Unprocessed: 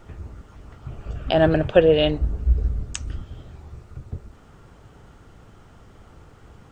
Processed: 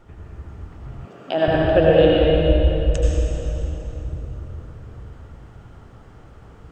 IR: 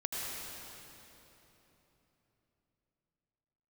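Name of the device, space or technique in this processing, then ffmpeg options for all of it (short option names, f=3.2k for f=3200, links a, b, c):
swimming-pool hall: -filter_complex "[1:a]atrim=start_sample=2205[a];[0:a][a]afir=irnorm=-1:irlink=0,highshelf=f=3.6k:g=-6,asettb=1/sr,asplit=3[b][c][d];[b]atrim=end=1.054[e];[c]atrim=start=1.05:end=1.48,asetpts=PTS-STARTPTS,afade=t=in:d=0.004:c=qsin,afade=t=out:st=0.426:d=0.004:c=qsin,highpass=f=200:w=0.5412,highpass=f=200:w=1.3066[f];[d]atrim=start=1.476[g];[e][f]acrossfade=d=0.004:c1=hsin:c2=qsin[h];[h][g]acrossfade=d=0.004:c1=qsin:c2=hsin,volume=-1dB"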